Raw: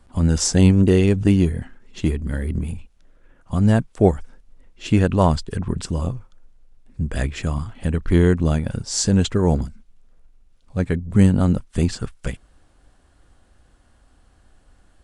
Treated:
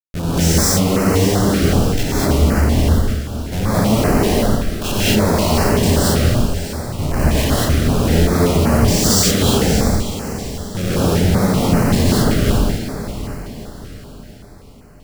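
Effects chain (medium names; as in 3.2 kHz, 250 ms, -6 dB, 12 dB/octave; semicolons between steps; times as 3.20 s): spectral sustain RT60 0.68 s; dynamic bell 1 kHz, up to +3 dB, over -36 dBFS, Q 1.8; in parallel at +2.5 dB: compression, threshold -24 dBFS, peak gain reduction 15.5 dB; on the sum: peak limiter -7 dBFS, peak gain reduction 8.5 dB; Schmitt trigger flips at -28 dBFS; echo that smears into a reverb 645 ms, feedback 45%, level -11 dB; gated-style reverb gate 260 ms rising, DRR -8 dB; step-sequenced notch 5.2 Hz 930–3500 Hz; trim -3 dB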